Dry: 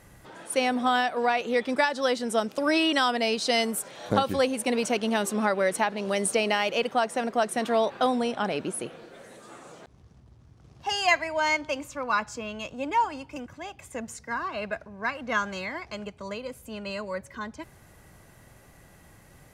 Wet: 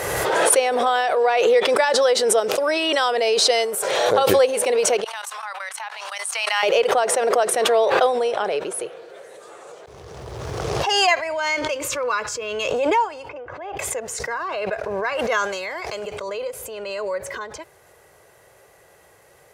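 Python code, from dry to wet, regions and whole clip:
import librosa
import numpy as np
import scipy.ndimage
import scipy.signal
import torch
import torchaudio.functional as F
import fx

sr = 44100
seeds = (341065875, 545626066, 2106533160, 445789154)

y = fx.chain(x, sr, fx.steep_highpass(hz=870.0, slope=36),
    fx.level_steps(step_db=17),
    fx.quant_float(bits=6), at=(5.04, 6.63))
y = fx.chain(y, sr, fx.peak_eq(hz=760.0, db=-12.5, octaves=0.45),
    fx.sustainer(db_per_s=110.0), at=(11.31, 12.68))
y = fx.chain(y, sr, fx.lowpass(hz=1800.0, slope=12),
    fx.peak_eq(hz=200.0, db=-14.0, octaves=0.43), at=(13.29, 13.77))
y = fx.chain(y, sr, fx.high_shelf(hz=5500.0, db=9.0),
    fx.sustainer(db_per_s=51.0), at=(15.19, 16.11))
y = scipy.signal.sosfilt(scipy.signal.butter(2, 59.0, 'highpass', fs=sr, output='sos'), y)
y = fx.low_shelf_res(y, sr, hz=330.0, db=-9.5, q=3.0)
y = fx.pre_swell(y, sr, db_per_s=24.0)
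y = y * 10.0 ** (2.0 / 20.0)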